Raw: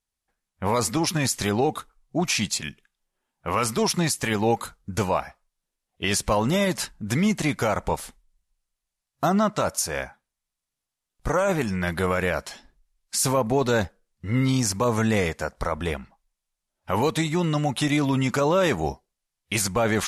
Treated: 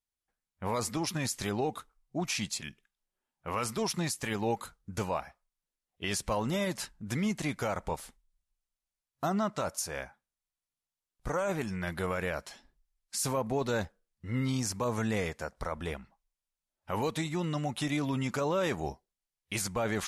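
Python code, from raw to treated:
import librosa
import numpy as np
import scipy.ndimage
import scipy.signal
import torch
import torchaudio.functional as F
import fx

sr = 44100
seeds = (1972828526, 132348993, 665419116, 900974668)

y = x * librosa.db_to_amplitude(-9.0)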